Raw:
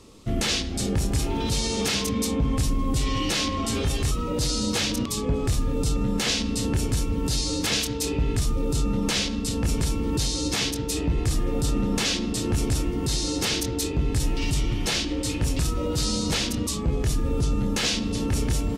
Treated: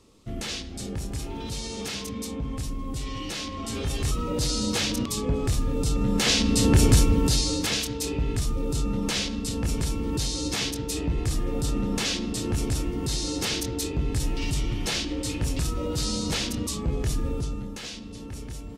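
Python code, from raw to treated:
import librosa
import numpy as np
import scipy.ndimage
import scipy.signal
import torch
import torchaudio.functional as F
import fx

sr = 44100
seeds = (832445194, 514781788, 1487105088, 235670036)

y = fx.gain(x, sr, db=fx.line((3.49, -8.0), (4.14, -1.0), (5.88, -1.0), (6.91, 8.0), (7.76, -2.5), (17.25, -2.5), (17.81, -13.0)))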